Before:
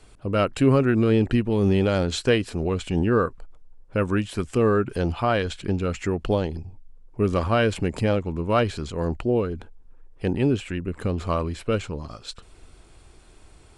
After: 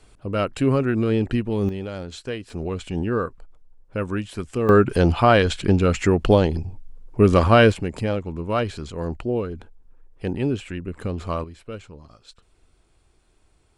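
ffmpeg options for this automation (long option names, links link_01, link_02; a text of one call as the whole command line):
ffmpeg -i in.wav -af "asetnsamples=nb_out_samples=441:pad=0,asendcmd='1.69 volume volume -10dB;2.5 volume volume -3dB;4.69 volume volume 7dB;7.72 volume volume -2dB;11.44 volume volume -11dB',volume=-1.5dB" out.wav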